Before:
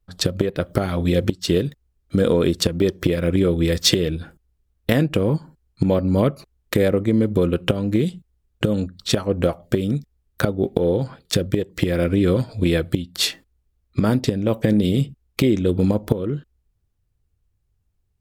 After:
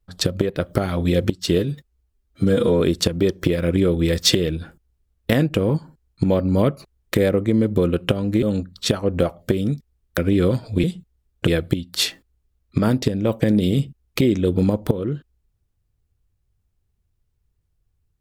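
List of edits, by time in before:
1.59–2.4 stretch 1.5×
8.02–8.66 move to 12.69
10.41–12.03 cut

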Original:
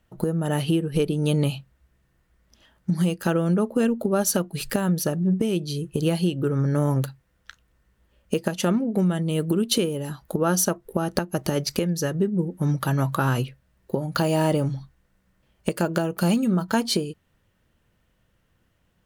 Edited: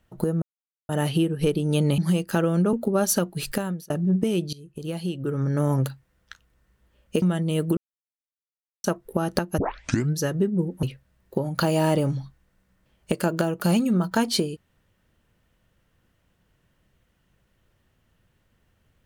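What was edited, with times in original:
0.42 insert silence 0.47 s
1.51–2.9 cut
3.65–3.91 cut
4.66–5.08 fade out
5.71–6.94 fade in, from -19.5 dB
8.4–9.02 cut
9.57–10.64 mute
11.38 tape start 0.60 s
12.63–13.4 cut

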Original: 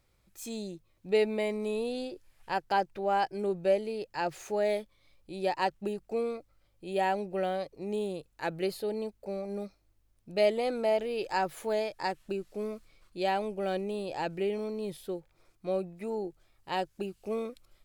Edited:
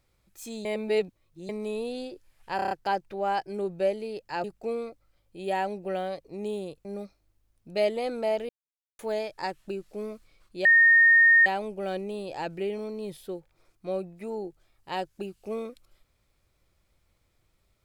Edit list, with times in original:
0.65–1.49 reverse
2.56 stutter 0.03 s, 6 plays
4.29–5.92 cut
8.33–9.46 cut
11.1–11.6 mute
13.26 add tone 1840 Hz -14 dBFS 0.81 s

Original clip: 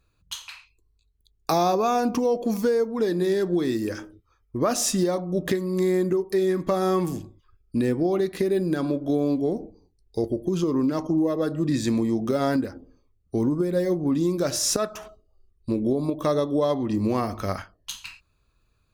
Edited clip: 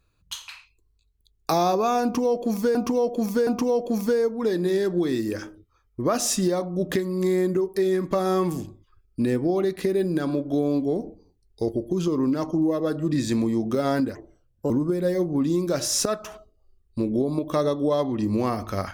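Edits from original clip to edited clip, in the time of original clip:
2.03–2.75 loop, 3 plays
12.71–13.41 speed 127%

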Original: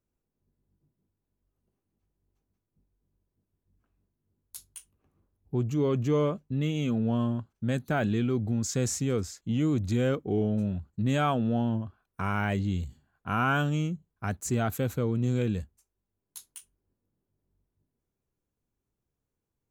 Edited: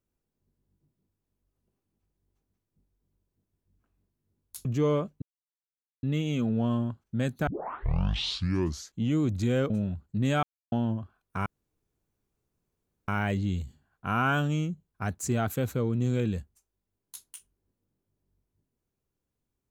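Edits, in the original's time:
4.65–5.95 cut
6.52 insert silence 0.81 s
7.96 tape start 1.50 s
10.19–10.54 cut
11.27–11.56 mute
12.3 insert room tone 1.62 s

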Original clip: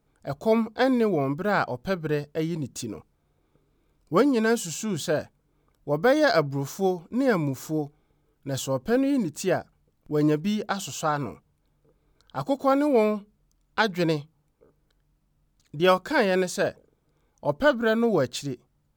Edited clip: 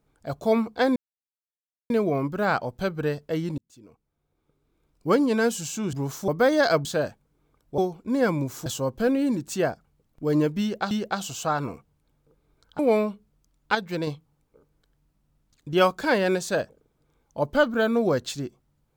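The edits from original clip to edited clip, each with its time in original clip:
0.96 insert silence 0.94 s
2.64–4.29 fade in
4.99–5.92 swap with 6.49–6.84
7.72–8.54 cut
10.49–10.79 loop, 2 plays
12.37–12.86 cut
13.82–14.14 gain -5 dB

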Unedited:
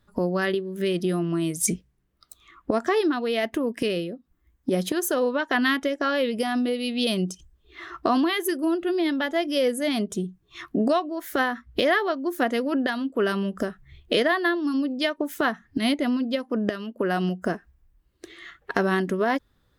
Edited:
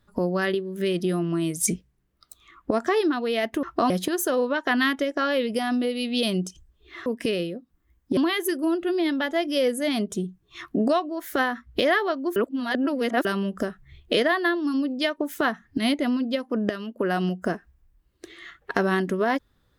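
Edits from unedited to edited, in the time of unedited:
3.63–4.74 swap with 7.9–8.17
12.36–13.25 reverse

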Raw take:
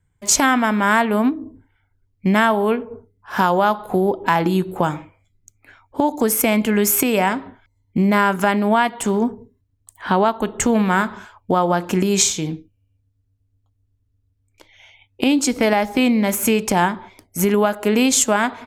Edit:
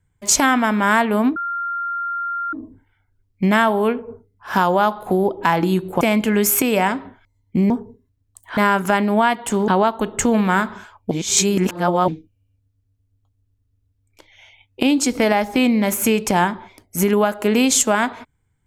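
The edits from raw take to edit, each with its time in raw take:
1.36 add tone 1390 Hz -21.5 dBFS 1.17 s
4.84–6.42 cut
9.22–10.09 move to 8.11
11.52–12.49 reverse

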